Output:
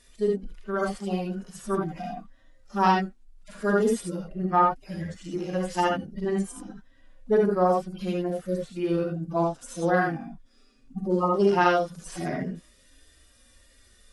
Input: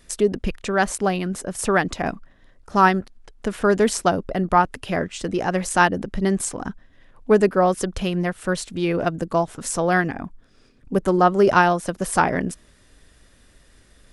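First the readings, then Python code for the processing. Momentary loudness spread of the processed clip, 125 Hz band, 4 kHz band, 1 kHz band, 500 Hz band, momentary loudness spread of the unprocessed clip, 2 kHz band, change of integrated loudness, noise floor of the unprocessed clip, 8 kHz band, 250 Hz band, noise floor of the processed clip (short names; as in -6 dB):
14 LU, -5.0 dB, -8.0 dB, -5.5 dB, -4.5 dB, 11 LU, -9.5 dB, -5.5 dB, -55 dBFS, -14.0 dB, -5.0 dB, -59 dBFS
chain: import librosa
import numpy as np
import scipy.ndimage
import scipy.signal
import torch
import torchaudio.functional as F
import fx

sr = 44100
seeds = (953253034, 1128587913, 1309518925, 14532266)

y = fx.hpss_only(x, sr, part='harmonic')
y = fx.peak_eq(y, sr, hz=7600.0, db=8.0, octaves=3.0)
y = fx.rev_gated(y, sr, seeds[0], gate_ms=100, shape='rising', drr_db=-0.5)
y = F.gain(torch.from_numpy(y), -7.0).numpy()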